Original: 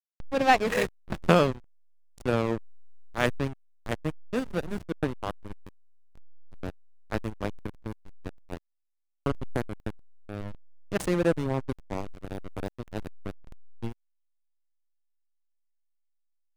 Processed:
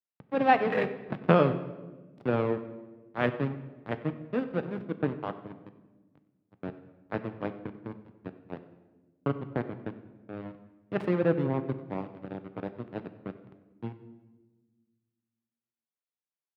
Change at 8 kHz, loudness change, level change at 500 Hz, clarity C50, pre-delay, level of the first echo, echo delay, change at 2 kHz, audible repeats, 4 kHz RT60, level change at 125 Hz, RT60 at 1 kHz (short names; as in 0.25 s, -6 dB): under -25 dB, -1.0 dB, -0.5 dB, 12.0 dB, 7 ms, -19.5 dB, 95 ms, -3.5 dB, 1, 0.90 s, -0.5 dB, 1.1 s